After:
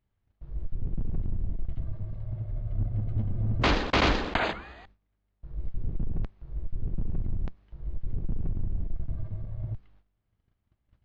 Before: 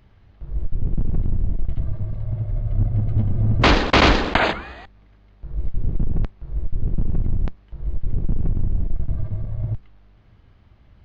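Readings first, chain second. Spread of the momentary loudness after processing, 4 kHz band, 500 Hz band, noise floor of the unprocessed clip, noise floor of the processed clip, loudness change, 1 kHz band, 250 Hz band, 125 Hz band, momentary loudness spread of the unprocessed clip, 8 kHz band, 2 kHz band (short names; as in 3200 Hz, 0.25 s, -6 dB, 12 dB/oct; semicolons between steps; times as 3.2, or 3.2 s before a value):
16 LU, -9.0 dB, -9.0 dB, -52 dBFS, -77 dBFS, -9.0 dB, -9.0 dB, -9.0 dB, -9.0 dB, 16 LU, n/a, -9.0 dB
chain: gate -47 dBFS, range -16 dB; gain -9 dB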